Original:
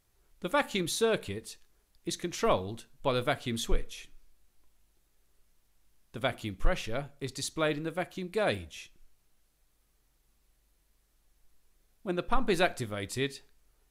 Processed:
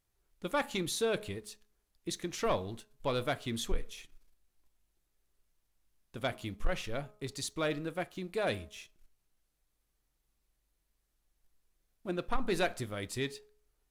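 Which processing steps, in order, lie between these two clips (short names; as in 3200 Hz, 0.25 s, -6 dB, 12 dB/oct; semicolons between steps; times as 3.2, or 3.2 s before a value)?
sample leveller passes 1; de-hum 210.5 Hz, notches 6; gain -6.5 dB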